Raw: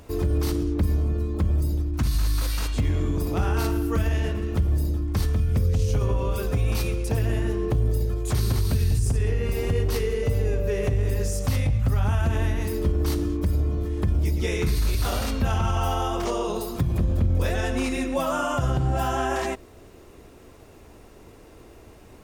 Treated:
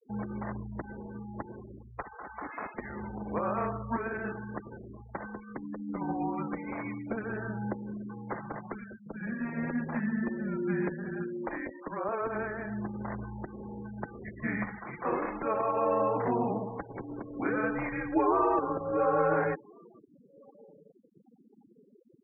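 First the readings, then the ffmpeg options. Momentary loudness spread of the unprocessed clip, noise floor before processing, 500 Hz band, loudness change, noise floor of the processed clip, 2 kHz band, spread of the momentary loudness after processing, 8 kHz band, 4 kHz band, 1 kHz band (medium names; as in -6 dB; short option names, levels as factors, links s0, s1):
3 LU, -48 dBFS, -4.0 dB, -8.5 dB, -61 dBFS, -2.5 dB, 15 LU, under -40 dB, under -40 dB, -1.0 dB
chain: -filter_complex "[0:a]highpass=f=490:t=q:w=0.5412,highpass=f=490:t=q:w=1.307,lowpass=f=2200:t=q:w=0.5176,lowpass=f=2200:t=q:w=0.7071,lowpass=f=2200:t=q:w=1.932,afreqshift=-230,asplit=2[s0][s1];[s1]adelay=1399,volume=0.0447,highshelf=f=4000:g=-31.5[s2];[s0][s2]amix=inputs=2:normalize=0,afftfilt=real='re*gte(hypot(re,im),0.01)':imag='im*gte(hypot(re,im),0.01)':win_size=1024:overlap=0.75,volume=1.19"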